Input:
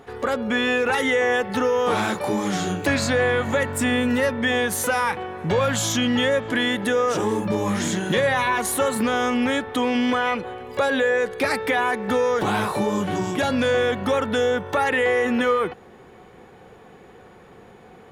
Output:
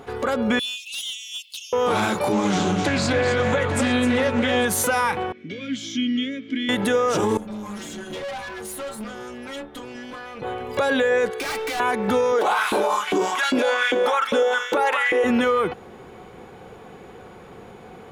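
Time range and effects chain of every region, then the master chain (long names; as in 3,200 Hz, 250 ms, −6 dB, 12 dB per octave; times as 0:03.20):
0:00.59–0:01.73: Butterworth high-pass 2,800 Hz 72 dB per octave + hard clipping −29 dBFS
0:02.32–0:04.65: low-pass filter 7,200 Hz + multi-tap delay 258/848 ms −6.5/−13 dB + highs frequency-modulated by the lows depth 0.18 ms
0:05.32–0:06.69: formant filter i + parametric band 5,600 Hz +11 dB 0.67 octaves
0:07.37–0:10.42: stiff-string resonator 68 Hz, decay 0.45 s, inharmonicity 0.008 + tube saturation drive 33 dB, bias 0.65
0:11.30–0:11.80: high-pass filter 460 Hz 6 dB per octave + gain into a clipping stage and back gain 30.5 dB + comb filter 2.6 ms, depth 42%
0:12.32–0:15.24: single-tap delay 198 ms −6.5 dB + auto-filter high-pass saw up 2.5 Hz 270–2,400 Hz
whole clip: notch filter 1,800 Hz, Q 12; brickwall limiter −17 dBFS; level +4.5 dB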